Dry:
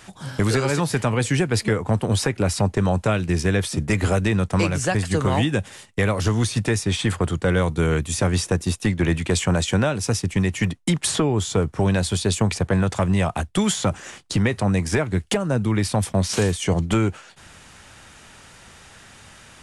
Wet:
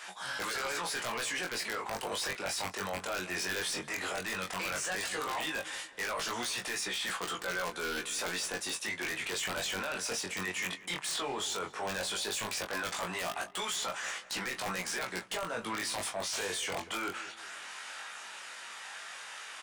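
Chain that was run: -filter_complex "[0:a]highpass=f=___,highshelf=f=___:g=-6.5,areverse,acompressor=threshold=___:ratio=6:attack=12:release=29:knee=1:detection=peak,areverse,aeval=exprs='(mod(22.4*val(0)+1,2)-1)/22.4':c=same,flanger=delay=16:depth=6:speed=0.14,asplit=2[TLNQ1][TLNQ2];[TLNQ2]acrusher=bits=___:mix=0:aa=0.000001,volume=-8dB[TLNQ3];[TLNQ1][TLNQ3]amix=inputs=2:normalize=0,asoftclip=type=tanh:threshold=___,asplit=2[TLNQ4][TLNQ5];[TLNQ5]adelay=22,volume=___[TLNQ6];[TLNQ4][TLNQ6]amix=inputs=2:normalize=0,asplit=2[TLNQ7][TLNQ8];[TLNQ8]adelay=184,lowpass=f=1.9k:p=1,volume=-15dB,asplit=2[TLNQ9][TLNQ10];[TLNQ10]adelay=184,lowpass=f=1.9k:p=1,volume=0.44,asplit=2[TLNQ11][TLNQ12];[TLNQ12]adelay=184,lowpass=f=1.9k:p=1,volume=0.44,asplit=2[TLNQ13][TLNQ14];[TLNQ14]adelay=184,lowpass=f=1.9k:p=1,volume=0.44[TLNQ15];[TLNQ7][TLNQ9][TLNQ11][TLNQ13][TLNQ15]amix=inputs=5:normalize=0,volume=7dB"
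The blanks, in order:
900, 5.5k, -39dB, 4, -36.5dB, -7.5dB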